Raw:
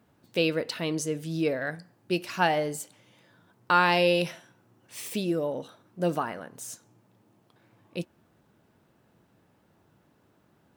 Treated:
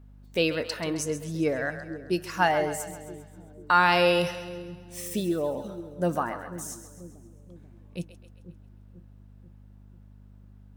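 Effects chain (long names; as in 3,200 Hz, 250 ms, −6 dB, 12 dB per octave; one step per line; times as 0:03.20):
noise reduction from a noise print of the clip's start 7 dB
mains hum 50 Hz, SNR 20 dB
echo with a time of its own for lows and highs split 420 Hz, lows 489 ms, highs 133 ms, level −11.5 dB
level +1.5 dB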